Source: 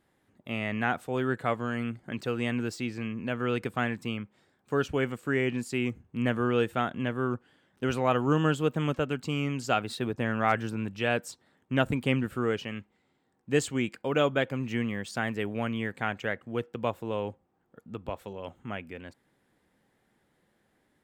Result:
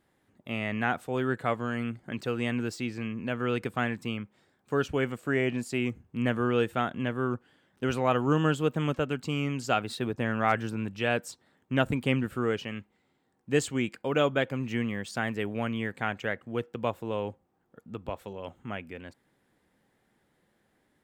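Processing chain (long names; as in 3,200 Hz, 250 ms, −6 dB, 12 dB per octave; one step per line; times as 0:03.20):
0:05.17–0:05.80: parametric band 650 Hz +8 dB 0.3 octaves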